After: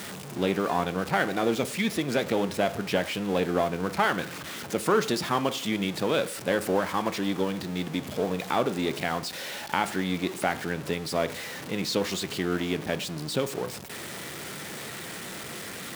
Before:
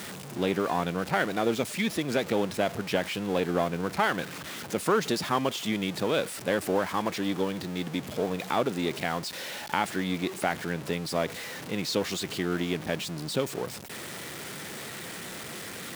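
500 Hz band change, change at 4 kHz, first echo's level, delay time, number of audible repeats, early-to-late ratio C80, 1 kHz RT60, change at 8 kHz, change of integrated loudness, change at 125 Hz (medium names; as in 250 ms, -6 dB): +1.5 dB, +1.0 dB, no echo, no echo, no echo, 21.0 dB, 0.55 s, +1.0 dB, +1.0 dB, +1.0 dB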